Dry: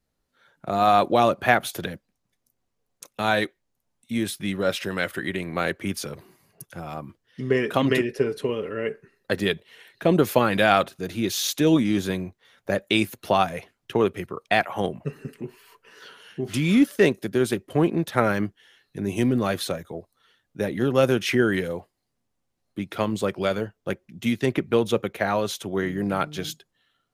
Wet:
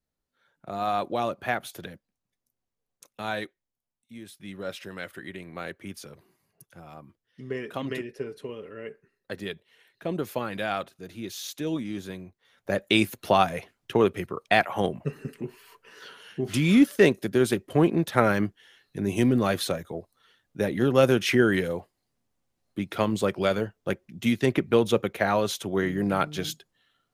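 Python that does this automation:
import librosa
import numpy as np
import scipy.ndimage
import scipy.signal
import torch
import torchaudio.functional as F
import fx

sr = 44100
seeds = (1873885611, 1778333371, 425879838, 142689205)

y = fx.gain(x, sr, db=fx.line((3.36, -9.0), (4.21, -18.0), (4.59, -11.0), (12.23, -11.0), (12.87, 0.0)))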